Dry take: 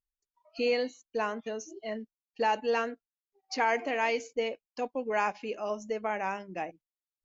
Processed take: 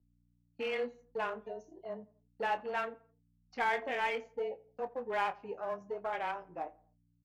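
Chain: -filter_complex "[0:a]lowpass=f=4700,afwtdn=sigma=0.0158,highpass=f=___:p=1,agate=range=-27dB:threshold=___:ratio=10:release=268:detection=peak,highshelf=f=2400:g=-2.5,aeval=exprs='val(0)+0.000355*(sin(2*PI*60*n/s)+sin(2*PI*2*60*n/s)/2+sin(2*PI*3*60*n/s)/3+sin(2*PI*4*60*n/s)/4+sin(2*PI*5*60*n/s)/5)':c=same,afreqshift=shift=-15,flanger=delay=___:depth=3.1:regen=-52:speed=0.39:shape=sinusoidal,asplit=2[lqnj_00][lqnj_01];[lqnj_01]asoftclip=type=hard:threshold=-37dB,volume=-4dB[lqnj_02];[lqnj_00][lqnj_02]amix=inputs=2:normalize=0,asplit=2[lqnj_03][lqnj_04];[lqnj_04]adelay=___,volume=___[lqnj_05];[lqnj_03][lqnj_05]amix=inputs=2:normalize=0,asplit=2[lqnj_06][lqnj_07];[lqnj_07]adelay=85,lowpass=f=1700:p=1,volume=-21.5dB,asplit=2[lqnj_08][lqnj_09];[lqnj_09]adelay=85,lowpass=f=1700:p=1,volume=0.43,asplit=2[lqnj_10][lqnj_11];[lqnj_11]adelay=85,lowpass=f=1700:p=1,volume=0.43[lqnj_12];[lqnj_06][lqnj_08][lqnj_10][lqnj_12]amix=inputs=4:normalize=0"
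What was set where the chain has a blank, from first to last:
770, -59dB, 9.9, 25, -13dB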